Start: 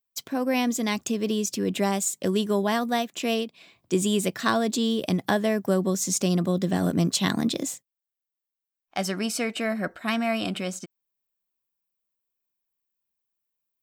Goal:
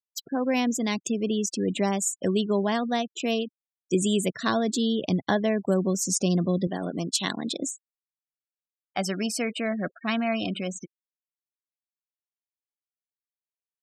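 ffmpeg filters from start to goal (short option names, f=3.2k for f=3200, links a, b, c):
-filter_complex "[0:a]asettb=1/sr,asplit=3[a][b][c];[a]atrim=end=6.674[d];[b]atrim=start=6.67:end=7.61,asetpts=PTS-STARTPTS,afade=t=in:d=0.004:c=qsin,afade=t=out:st=0.936:d=0.004:c=qsin,highpass=f=480:p=1[e];[c]atrim=start=7.606[f];[d][e]acrossfade=d=0.004:c1=hsin:c2=qsin[g];[g][f]acrossfade=d=0.004:c1=qsin:c2=hsin,afftfilt=real='re*gte(hypot(re,im),0.0224)':imag='im*gte(hypot(re,im),0.0224)':win_size=1024:overlap=0.75,adynamicequalizer=threshold=0.00794:dfrequency=1300:dqfactor=0.99:tfrequency=1300:tqfactor=0.99:attack=5:release=100:ratio=0.375:range=2.5:mode=cutabove:tftype=bell"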